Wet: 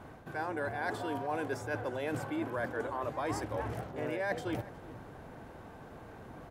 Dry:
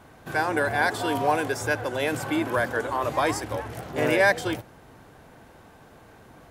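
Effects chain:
high-shelf EQ 2,300 Hz −10 dB
reversed playback
downward compressor 6 to 1, threshold −35 dBFS, peak gain reduction 16.5 dB
reversed playback
slap from a distant wall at 63 metres, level −18 dB
level +2 dB

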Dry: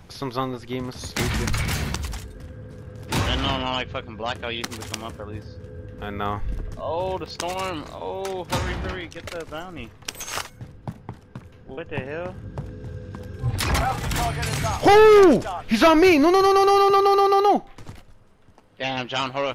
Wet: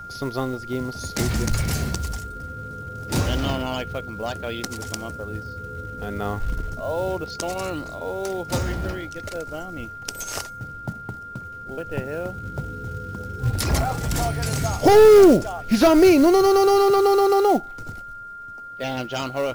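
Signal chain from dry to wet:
flat-topped bell 1,800 Hz −8 dB 2.4 octaves
log-companded quantiser 6 bits
steady tone 1,400 Hz −37 dBFS
level +2 dB

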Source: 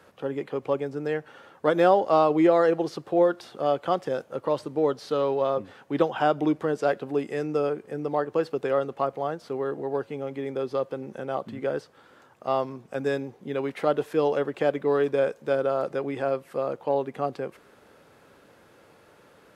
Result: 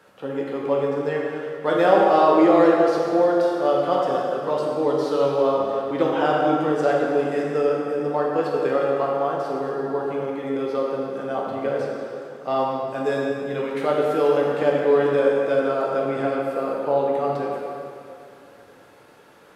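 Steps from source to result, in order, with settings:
low-shelf EQ 150 Hz −6 dB
dense smooth reverb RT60 2.6 s, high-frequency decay 0.8×, DRR −3.5 dB

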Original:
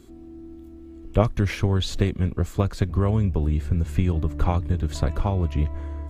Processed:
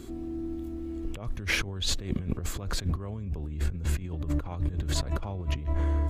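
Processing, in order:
compressor whose output falls as the input rises −31 dBFS, ratio −1

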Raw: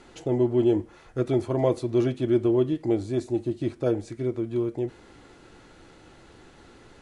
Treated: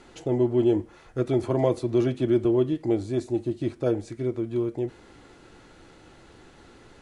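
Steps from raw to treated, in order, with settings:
0:01.43–0:02.45: multiband upward and downward compressor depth 40%

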